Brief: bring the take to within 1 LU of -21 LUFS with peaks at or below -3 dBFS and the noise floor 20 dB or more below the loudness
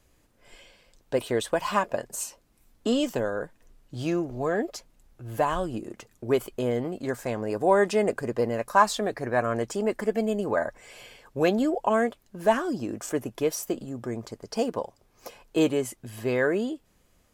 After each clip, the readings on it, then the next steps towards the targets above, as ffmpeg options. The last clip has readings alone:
loudness -27.5 LUFS; peak -5.0 dBFS; loudness target -21.0 LUFS
-> -af "volume=6.5dB,alimiter=limit=-3dB:level=0:latency=1"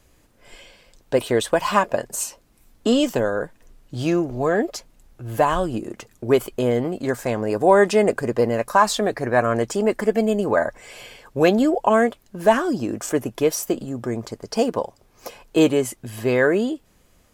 loudness -21.5 LUFS; peak -3.0 dBFS; noise floor -58 dBFS

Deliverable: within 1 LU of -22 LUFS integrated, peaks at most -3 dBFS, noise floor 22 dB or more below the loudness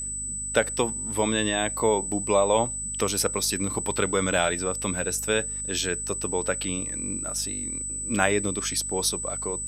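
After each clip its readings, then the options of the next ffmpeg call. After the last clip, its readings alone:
hum 50 Hz; harmonics up to 250 Hz; hum level -39 dBFS; steady tone 8000 Hz; tone level -30 dBFS; loudness -25.5 LUFS; peak -4.5 dBFS; loudness target -22.0 LUFS
-> -af "bandreject=f=50:t=h:w=4,bandreject=f=100:t=h:w=4,bandreject=f=150:t=h:w=4,bandreject=f=200:t=h:w=4,bandreject=f=250:t=h:w=4"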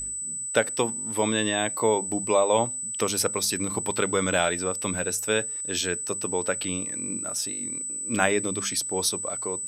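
hum none; steady tone 8000 Hz; tone level -30 dBFS
-> -af "bandreject=f=8k:w=30"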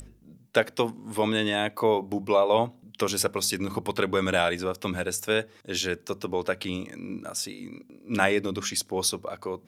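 steady tone none; loudness -27.5 LUFS; peak -4.5 dBFS; loudness target -22.0 LUFS
-> -af "volume=5.5dB,alimiter=limit=-3dB:level=0:latency=1"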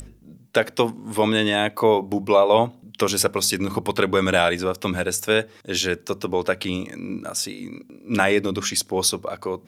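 loudness -22.0 LUFS; peak -3.0 dBFS; noise floor -51 dBFS

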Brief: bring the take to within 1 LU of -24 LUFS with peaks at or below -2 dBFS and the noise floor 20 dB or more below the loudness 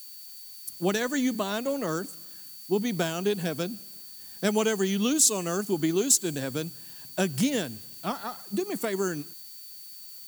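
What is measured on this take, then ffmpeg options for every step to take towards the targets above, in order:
steady tone 4500 Hz; tone level -50 dBFS; noise floor -45 dBFS; noise floor target -48 dBFS; loudness -27.5 LUFS; peak -6.0 dBFS; loudness target -24.0 LUFS
-> -af "bandreject=f=4.5k:w=30"
-af "afftdn=nr=6:nf=-45"
-af "volume=3.5dB"

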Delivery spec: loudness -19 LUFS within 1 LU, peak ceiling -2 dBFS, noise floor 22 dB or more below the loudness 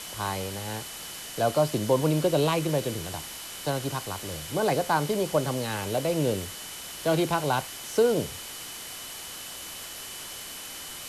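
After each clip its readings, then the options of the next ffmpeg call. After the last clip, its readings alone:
steady tone 3000 Hz; tone level -46 dBFS; noise floor -40 dBFS; noise floor target -51 dBFS; loudness -28.5 LUFS; peak -11.0 dBFS; loudness target -19.0 LUFS
-> -af "bandreject=f=3k:w=30"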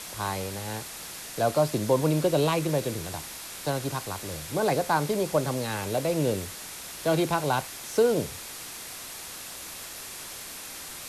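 steady tone none; noise floor -40 dBFS; noise floor target -51 dBFS
-> -af "afftdn=nr=11:nf=-40"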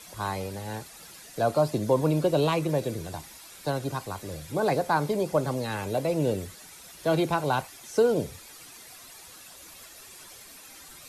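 noise floor -48 dBFS; noise floor target -50 dBFS
-> -af "afftdn=nr=6:nf=-48"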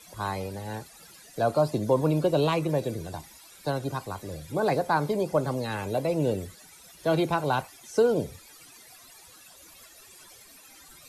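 noise floor -52 dBFS; loudness -27.5 LUFS; peak -11.0 dBFS; loudness target -19.0 LUFS
-> -af "volume=8.5dB"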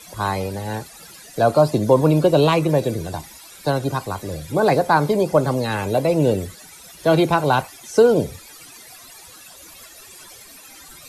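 loudness -19.0 LUFS; peak -2.5 dBFS; noise floor -43 dBFS

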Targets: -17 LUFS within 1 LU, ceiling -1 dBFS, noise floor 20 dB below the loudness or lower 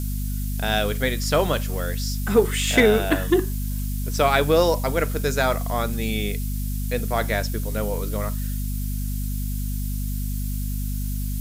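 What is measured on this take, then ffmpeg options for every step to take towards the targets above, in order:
hum 50 Hz; harmonics up to 250 Hz; hum level -24 dBFS; noise floor -26 dBFS; noise floor target -44 dBFS; loudness -24.0 LUFS; peak -3.5 dBFS; loudness target -17.0 LUFS
-> -af "bandreject=f=50:t=h:w=4,bandreject=f=100:t=h:w=4,bandreject=f=150:t=h:w=4,bandreject=f=200:t=h:w=4,bandreject=f=250:t=h:w=4"
-af "afftdn=nr=18:nf=-26"
-af "volume=7dB,alimiter=limit=-1dB:level=0:latency=1"

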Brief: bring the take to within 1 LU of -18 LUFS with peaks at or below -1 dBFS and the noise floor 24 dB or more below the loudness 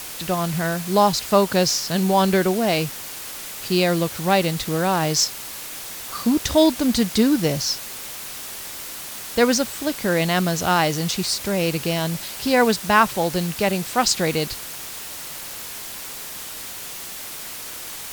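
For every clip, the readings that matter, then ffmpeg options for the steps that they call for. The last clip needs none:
noise floor -34 dBFS; noise floor target -46 dBFS; loudness -22.0 LUFS; peak -1.5 dBFS; loudness target -18.0 LUFS
-> -af "afftdn=nr=12:nf=-34"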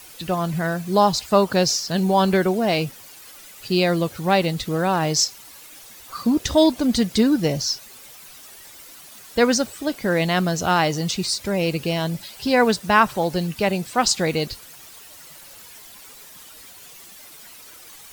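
noise floor -44 dBFS; noise floor target -45 dBFS
-> -af "afftdn=nr=6:nf=-44"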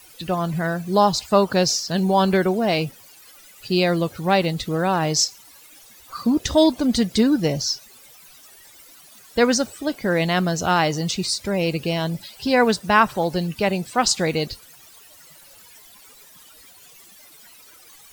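noise floor -48 dBFS; loudness -21.0 LUFS; peak -2.0 dBFS; loudness target -18.0 LUFS
-> -af "volume=3dB,alimiter=limit=-1dB:level=0:latency=1"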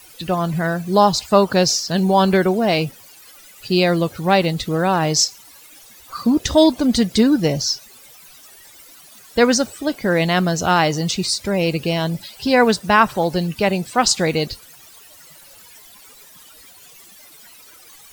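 loudness -18.0 LUFS; peak -1.0 dBFS; noise floor -45 dBFS

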